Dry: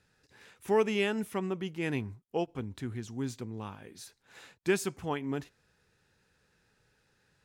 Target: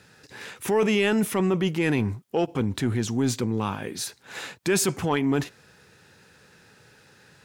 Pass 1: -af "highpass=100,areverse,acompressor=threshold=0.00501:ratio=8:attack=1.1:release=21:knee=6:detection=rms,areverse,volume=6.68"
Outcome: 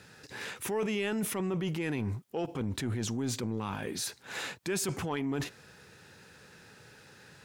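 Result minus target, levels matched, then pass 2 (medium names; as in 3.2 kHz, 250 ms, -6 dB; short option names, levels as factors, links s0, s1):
compression: peak gain reduction +10 dB
-af "highpass=100,areverse,acompressor=threshold=0.0188:ratio=8:attack=1.1:release=21:knee=6:detection=rms,areverse,volume=6.68"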